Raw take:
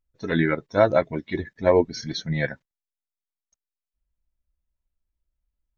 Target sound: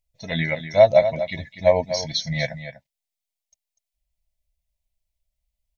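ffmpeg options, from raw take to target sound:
ffmpeg -i in.wav -filter_complex "[0:a]firequalizer=gain_entry='entry(170,0);entry(360,-19);entry(620,8);entry(1400,-17);entry(2000,5);entry(4000,7)':delay=0.05:min_phase=1,asplit=2[link_01][link_02];[link_02]aecho=0:1:245:0.282[link_03];[link_01][link_03]amix=inputs=2:normalize=0" out.wav

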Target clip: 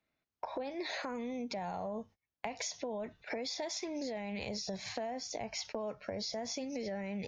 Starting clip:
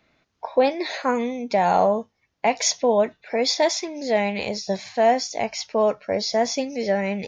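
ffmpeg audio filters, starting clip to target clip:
ffmpeg -i in.wav -filter_complex "[0:a]asettb=1/sr,asplit=3[link_01][link_02][link_03];[link_01]atrim=end=5.104[link_04];[link_02]atrim=start=5.1:end=5.65,asetpts=PTS-STARTPTS,afade=type=in:duration=0.004:curve=qsin,afade=type=out:start_time=0.546:duration=0.004:curve=qsin,highshelf=frequency=2400:gain=-4.5[link_05];[link_03]atrim=start=5.646[link_06];[link_04][link_05]acrossfade=duration=0.004:curve1=hsin:curve2=qsin[link_07];[link_07][link_06]acrossfade=duration=0.004:curve1=qsin:curve2=hsin,agate=range=-29dB:threshold=-41dB:ratio=16:detection=peak,acrossover=split=130[link_08][link_09];[link_09]acompressor=threshold=-39dB:ratio=2.5[link_10];[link_08][link_10]amix=inputs=2:normalize=0,alimiter=level_in=5.5dB:limit=-24dB:level=0:latency=1:release=43,volume=-5.5dB,acompressor=threshold=-45dB:ratio=6,volume=8.5dB" out.wav

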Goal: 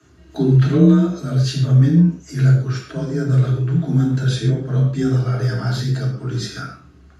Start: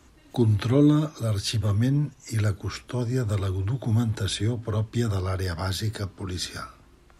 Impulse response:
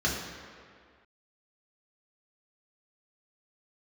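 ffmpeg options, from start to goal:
-filter_complex "[0:a]afreqshift=29[link_01];[1:a]atrim=start_sample=2205,atrim=end_sample=6615[link_02];[link_01][link_02]afir=irnorm=-1:irlink=0,volume=-7.5dB"

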